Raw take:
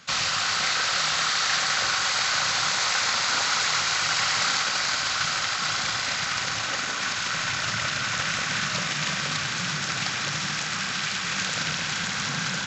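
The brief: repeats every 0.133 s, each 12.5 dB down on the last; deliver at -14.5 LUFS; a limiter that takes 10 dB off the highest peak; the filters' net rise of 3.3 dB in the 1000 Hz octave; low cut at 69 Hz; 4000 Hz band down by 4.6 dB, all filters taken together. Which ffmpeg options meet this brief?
-af "highpass=69,equalizer=f=1k:t=o:g=5,equalizer=f=4k:t=o:g=-6,alimiter=limit=-20.5dB:level=0:latency=1,aecho=1:1:133|266|399:0.237|0.0569|0.0137,volume=14dB"

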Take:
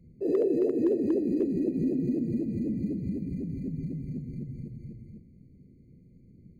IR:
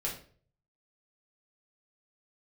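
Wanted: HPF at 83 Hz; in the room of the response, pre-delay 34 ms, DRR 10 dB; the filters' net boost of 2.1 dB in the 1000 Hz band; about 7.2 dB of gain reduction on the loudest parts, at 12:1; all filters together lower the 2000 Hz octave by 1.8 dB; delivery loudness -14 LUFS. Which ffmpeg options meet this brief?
-filter_complex "[0:a]highpass=83,equalizer=f=1k:t=o:g=3.5,equalizer=f=2k:t=o:g=-3,acompressor=threshold=-28dB:ratio=12,asplit=2[a][b];[1:a]atrim=start_sample=2205,adelay=34[c];[b][c]afir=irnorm=-1:irlink=0,volume=-13.5dB[d];[a][d]amix=inputs=2:normalize=0,volume=19.5dB"

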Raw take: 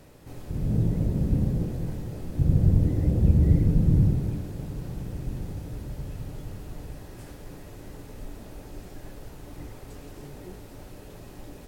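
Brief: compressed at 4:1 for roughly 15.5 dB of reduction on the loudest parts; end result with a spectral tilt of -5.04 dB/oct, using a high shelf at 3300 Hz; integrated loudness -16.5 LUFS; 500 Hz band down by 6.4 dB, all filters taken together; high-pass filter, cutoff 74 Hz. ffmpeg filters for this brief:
-af "highpass=74,equalizer=f=500:t=o:g=-9,highshelf=f=3.3k:g=7.5,acompressor=threshold=-36dB:ratio=4,volume=24.5dB"

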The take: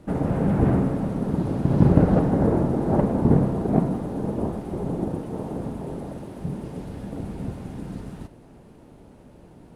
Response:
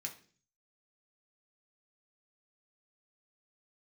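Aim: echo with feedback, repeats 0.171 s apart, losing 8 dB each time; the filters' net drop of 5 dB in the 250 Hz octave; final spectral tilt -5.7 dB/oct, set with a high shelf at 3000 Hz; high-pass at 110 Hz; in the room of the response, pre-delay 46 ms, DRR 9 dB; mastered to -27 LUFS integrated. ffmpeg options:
-filter_complex "[0:a]highpass=110,equalizer=f=250:t=o:g=-6.5,highshelf=f=3k:g=-8.5,aecho=1:1:171|342|513|684|855:0.398|0.159|0.0637|0.0255|0.0102,asplit=2[a][b];[1:a]atrim=start_sample=2205,adelay=46[c];[b][c]afir=irnorm=-1:irlink=0,volume=-7dB[d];[a][d]amix=inputs=2:normalize=0,volume=-0.5dB"

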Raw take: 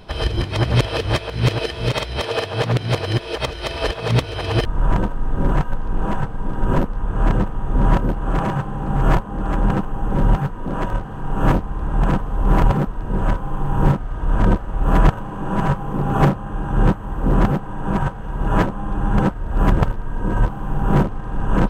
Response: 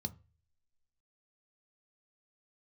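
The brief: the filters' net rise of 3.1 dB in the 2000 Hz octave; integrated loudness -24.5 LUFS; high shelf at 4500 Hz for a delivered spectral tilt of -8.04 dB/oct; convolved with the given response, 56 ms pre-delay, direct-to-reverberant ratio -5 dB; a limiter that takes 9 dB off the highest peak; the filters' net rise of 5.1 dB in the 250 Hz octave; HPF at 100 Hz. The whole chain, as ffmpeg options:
-filter_complex "[0:a]highpass=100,equalizer=f=250:t=o:g=7.5,equalizer=f=2k:t=o:g=3,highshelf=f=4.5k:g=5,alimiter=limit=-9dB:level=0:latency=1,asplit=2[a][b];[1:a]atrim=start_sample=2205,adelay=56[c];[b][c]afir=irnorm=-1:irlink=0,volume=6.5dB[d];[a][d]amix=inputs=2:normalize=0,volume=-17dB"

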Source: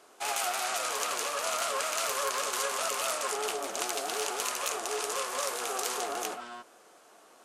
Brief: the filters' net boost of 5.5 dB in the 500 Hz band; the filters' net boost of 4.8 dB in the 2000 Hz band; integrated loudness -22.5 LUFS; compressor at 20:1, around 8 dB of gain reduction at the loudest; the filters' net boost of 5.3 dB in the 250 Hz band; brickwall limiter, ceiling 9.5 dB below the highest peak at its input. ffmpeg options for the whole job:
-af "equalizer=f=250:t=o:g=4.5,equalizer=f=500:t=o:g=5.5,equalizer=f=2k:t=o:g=6,acompressor=threshold=-32dB:ratio=20,volume=15dB,alimiter=limit=-13dB:level=0:latency=1"

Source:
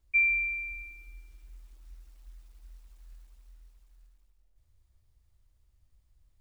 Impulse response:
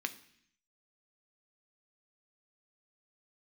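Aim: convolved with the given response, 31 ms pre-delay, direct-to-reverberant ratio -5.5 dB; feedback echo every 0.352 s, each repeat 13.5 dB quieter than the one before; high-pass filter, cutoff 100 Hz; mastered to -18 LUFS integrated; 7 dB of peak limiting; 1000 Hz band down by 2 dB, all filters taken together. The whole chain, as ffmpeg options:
-filter_complex "[0:a]highpass=100,equalizer=f=1k:t=o:g=-3,alimiter=level_in=1.5dB:limit=-24dB:level=0:latency=1,volume=-1.5dB,aecho=1:1:352|704:0.211|0.0444,asplit=2[a][b];[1:a]atrim=start_sample=2205,adelay=31[c];[b][c]afir=irnorm=-1:irlink=0,volume=3.5dB[d];[a][d]amix=inputs=2:normalize=0,volume=1dB"

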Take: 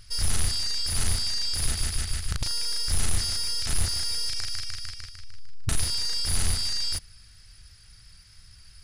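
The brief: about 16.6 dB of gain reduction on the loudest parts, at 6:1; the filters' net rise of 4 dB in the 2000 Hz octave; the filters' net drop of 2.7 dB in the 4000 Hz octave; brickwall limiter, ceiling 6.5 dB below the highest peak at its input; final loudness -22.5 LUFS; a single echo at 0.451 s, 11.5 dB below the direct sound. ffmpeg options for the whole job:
-af "equalizer=f=2k:t=o:g=6,equalizer=f=4k:t=o:g=-4.5,acompressor=threshold=-37dB:ratio=6,alimiter=level_in=9dB:limit=-24dB:level=0:latency=1,volume=-9dB,aecho=1:1:451:0.266,volume=21dB"

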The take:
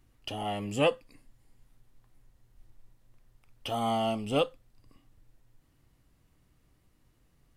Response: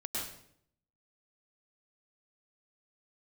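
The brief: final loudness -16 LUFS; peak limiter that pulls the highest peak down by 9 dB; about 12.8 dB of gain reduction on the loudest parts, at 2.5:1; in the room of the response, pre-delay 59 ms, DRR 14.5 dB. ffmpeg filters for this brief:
-filter_complex "[0:a]acompressor=threshold=-41dB:ratio=2.5,alimiter=level_in=11dB:limit=-24dB:level=0:latency=1,volume=-11dB,asplit=2[a][b];[1:a]atrim=start_sample=2205,adelay=59[c];[b][c]afir=irnorm=-1:irlink=0,volume=-17.5dB[d];[a][d]amix=inputs=2:normalize=0,volume=29dB"

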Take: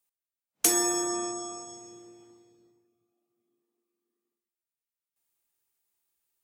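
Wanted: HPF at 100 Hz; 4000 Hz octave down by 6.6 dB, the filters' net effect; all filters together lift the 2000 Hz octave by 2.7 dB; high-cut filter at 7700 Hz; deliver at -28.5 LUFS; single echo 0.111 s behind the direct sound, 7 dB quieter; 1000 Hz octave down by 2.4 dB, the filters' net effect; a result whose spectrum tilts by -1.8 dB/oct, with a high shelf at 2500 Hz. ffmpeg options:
-af "highpass=100,lowpass=7.7k,equalizer=f=1k:t=o:g=-4.5,equalizer=f=2k:t=o:g=7.5,highshelf=f=2.5k:g=-4.5,equalizer=f=4k:t=o:g=-5.5,aecho=1:1:111:0.447,volume=2dB"

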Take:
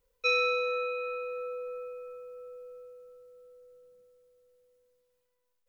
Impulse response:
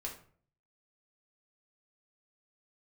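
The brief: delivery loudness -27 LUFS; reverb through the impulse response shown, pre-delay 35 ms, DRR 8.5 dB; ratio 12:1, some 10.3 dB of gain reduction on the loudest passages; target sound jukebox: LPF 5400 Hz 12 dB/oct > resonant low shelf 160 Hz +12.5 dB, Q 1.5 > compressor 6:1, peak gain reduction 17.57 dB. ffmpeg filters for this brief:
-filter_complex "[0:a]acompressor=threshold=-33dB:ratio=12,asplit=2[a][b];[1:a]atrim=start_sample=2205,adelay=35[c];[b][c]afir=irnorm=-1:irlink=0,volume=-8dB[d];[a][d]amix=inputs=2:normalize=0,lowpass=5.4k,lowshelf=f=160:t=q:w=1.5:g=12.5,acompressor=threshold=-51dB:ratio=6,volume=26.5dB"

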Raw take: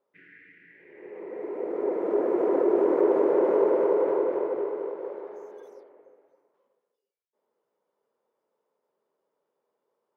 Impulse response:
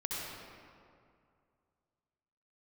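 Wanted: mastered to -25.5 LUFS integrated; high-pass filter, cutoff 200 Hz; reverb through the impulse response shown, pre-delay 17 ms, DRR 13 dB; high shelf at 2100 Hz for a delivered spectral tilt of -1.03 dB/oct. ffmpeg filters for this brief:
-filter_complex "[0:a]highpass=200,highshelf=f=2.1k:g=-4,asplit=2[a][b];[1:a]atrim=start_sample=2205,adelay=17[c];[b][c]afir=irnorm=-1:irlink=0,volume=-16.5dB[d];[a][d]amix=inputs=2:normalize=0,volume=-0.5dB"

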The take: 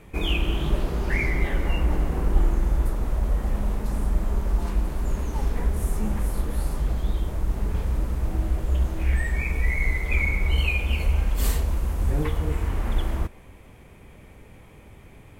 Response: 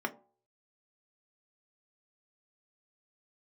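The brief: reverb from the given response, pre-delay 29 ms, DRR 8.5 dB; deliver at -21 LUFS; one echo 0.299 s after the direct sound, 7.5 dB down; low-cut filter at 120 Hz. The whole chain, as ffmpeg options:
-filter_complex "[0:a]highpass=120,aecho=1:1:299:0.422,asplit=2[a][b];[1:a]atrim=start_sample=2205,adelay=29[c];[b][c]afir=irnorm=-1:irlink=0,volume=-14dB[d];[a][d]amix=inputs=2:normalize=0,volume=9.5dB"

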